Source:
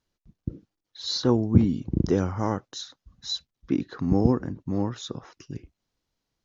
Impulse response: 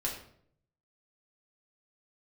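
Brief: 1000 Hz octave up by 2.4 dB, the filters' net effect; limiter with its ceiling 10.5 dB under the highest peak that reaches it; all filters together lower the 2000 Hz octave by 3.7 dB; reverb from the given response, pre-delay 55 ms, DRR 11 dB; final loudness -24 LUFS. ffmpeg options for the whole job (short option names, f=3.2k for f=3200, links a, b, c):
-filter_complex "[0:a]equalizer=f=1k:t=o:g=4.5,equalizer=f=2k:t=o:g=-7.5,alimiter=limit=-14dB:level=0:latency=1,asplit=2[a][b];[1:a]atrim=start_sample=2205,adelay=55[c];[b][c]afir=irnorm=-1:irlink=0,volume=-14.5dB[d];[a][d]amix=inputs=2:normalize=0,volume=4.5dB"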